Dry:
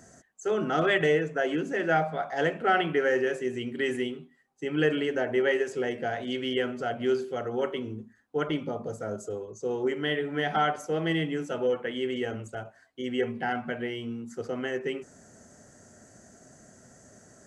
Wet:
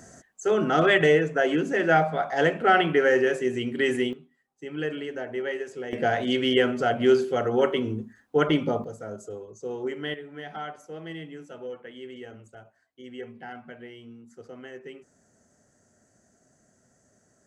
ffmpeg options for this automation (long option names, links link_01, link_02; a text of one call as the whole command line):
ffmpeg -i in.wav -af "asetnsamples=nb_out_samples=441:pad=0,asendcmd='4.13 volume volume -5.5dB;5.93 volume volume 7dB;8.84 volume volume -3dB;10.14 volume volume -10.5dB',volume=4.5dB" out.wav